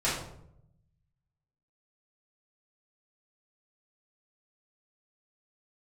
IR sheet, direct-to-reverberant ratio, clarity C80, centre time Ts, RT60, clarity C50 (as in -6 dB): -10.5 dB, 6.5 dB, 48 ms, 0.75 s, 2.5 dB